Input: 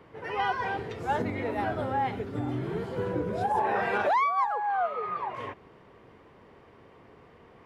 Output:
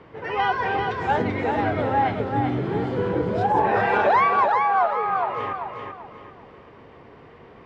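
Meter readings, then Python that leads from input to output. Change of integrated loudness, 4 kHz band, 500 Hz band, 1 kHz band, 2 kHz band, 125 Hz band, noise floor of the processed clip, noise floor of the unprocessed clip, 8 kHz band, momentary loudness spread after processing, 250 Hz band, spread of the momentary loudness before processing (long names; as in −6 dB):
+7.0 dB, +6.5 dB, +7.5 dB, +7.5 dB, +7.5 dB, +7.5 dB, −47 dBFS, −55 dBFS, can't be measured, 11 LU, +7.5 dB, 9 LU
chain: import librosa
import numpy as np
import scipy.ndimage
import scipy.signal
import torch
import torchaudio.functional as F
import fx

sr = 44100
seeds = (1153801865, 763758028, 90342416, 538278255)

p1 = scipy.signal.sosfilt(scipy.signal.butter(2, 5000.0, 'lowpass', fs=sr, output='sos'), x)
p2 = p1 + fx.echo_feedback(p1, sr, ms=387, feedback_pct=33, wet_db=-5.0, dry=0)
y = p2 * 10.0 ** (6.0 / 20.0)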